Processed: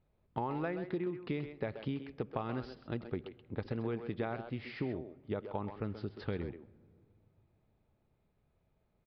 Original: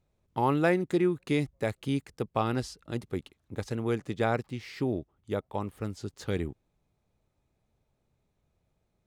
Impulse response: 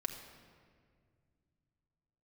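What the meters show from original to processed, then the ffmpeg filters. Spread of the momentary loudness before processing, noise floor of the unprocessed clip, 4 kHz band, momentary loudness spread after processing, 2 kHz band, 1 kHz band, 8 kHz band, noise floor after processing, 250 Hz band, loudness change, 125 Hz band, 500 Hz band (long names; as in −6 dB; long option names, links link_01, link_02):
13 LU, −77 dBFS, −10.0 dB, 6 LU, −10.0 dB, −9.0 dB, below −30 dB, −76 dBFS, −8.0 dB, −8.5 dB, −7.0 dB, −8.5 dB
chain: -filter_complex "[0:a]acompressor=threshold=-32dB:ratio=20,bass=frequency=250:gain=0,treble=frequency=4000:gain=-10,asplit=2[link_01][link_02];[link_02]adelay=130,highpass=300,lowpass=3400,asoftclip=type=hard:threshold=-31.5dB,volume=-7dB[link_03];[link_01][link_03]amix=inputs=2:normalize=0,asplit=2[link_04][link_05];[1:a]atrim=start_sample=2205,highshelf=frequency=4000:gain=-11[link_06];[link_05][link_06]afir=irnorm=-1:irlink=0,volume=-12.5dB[link_07];[link_04][link_07]amix=inputs=2:normalize=0,aresample=11025,aresample=44100,volume=-2dB"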